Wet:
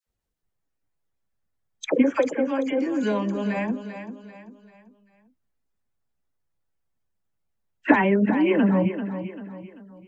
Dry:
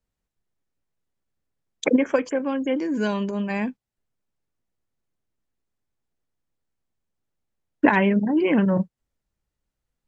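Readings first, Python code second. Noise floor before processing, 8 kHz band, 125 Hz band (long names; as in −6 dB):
−85 dBFS, can't be measured, 0.0 dB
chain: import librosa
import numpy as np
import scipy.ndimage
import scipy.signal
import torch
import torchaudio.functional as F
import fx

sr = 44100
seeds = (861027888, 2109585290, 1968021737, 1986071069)

p1 = fx.spec_quant(x, sr, step_db=15)
p2 = fx.dispersion(p1, sr, late='lows', ms=65.0, hz=1100.0)
p3 = p2 + fx.echo_feedback(p2, sr, ms=391, feedback_pct=40, wet_db=-10.5, dry=0)
y = fx.dynamic_eq(p3, sr, hz=4600.0, q=1.8, threshold_db=-49.0, ratio=4.0, max_db=-5)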